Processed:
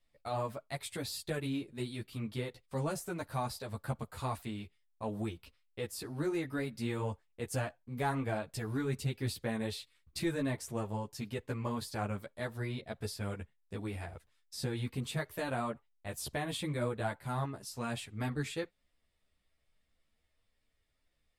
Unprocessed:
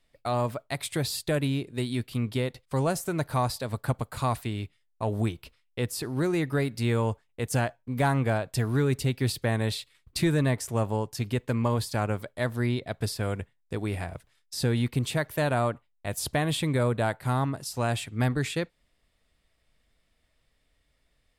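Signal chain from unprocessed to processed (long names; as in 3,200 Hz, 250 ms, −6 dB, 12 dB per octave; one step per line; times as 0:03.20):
string-ensemble chorus
level −5.5 dB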